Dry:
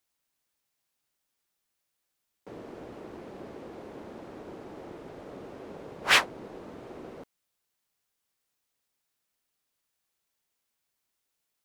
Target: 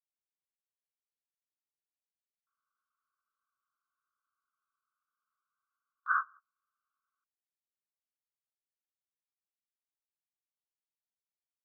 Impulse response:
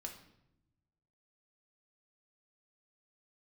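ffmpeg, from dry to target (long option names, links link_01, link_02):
-af "asuperpass=centerf=1300:order=12:qfactor=2.7,agate=range=-31dB:threshold=-50dB:ratio=16:detection=peak"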